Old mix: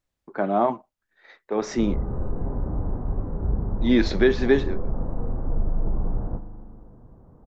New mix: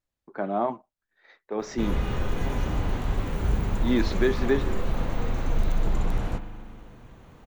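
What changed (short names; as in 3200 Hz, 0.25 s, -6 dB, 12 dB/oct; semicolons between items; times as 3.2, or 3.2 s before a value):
speech -5.0 dB; background: remove Gaussian blur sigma 8.7 samples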